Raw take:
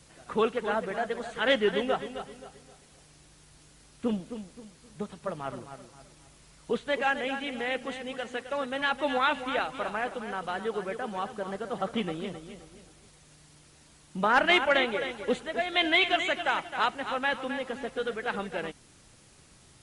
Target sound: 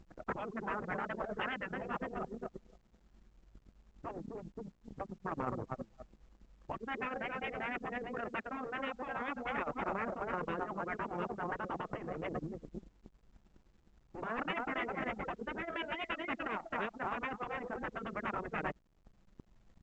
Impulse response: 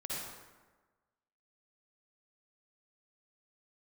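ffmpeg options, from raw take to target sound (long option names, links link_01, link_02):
-filter_complex "[0:a]asplit=2[link_01][link_02];[link_02]adelay=98,lowpass=frequency=1400:poles=1,volume=-22dB,asplit=2[link_03][link_04];[link_04]adelay=98,lowpass=frequency=1400:poles=1,volume=0.26[link_05];[link_01][link_03][link_05]amix=inputs=3:normalize=0,acompressor=threshold=-30dB:ratio=16,acrusher=bits=7:mix=0:aa=0.5,lowpass=frequency=2200:width=0.5412,lowpass=frequency=2200:width=1.3066,equalizer=frequency=230:width=3.8:gain=5,tremolo=f=9.8:d=0.66,acompressor=mode=upward:threshold=-41dB:ratio=2.5,anlmdn=0.251,asetrate=41625,aresample=44100,atempo=1.05946,afftfilt=real='re*lt(hypot(re,im),0.0447)':imag='im*lt(hypot(re,im),0.0447)':win_size=1024:overlap=0.75,adynamicequalizer=threshold=0.001:dfrequency=1600:dqfactor=3.8:tfrequency=1600:tqfactor=3.8:attack=5:release=100:ratio=0.375:range=2:mode=cutabove:tftype=bell,volume=9dB" -ar 16000 -c:a pcm_alaw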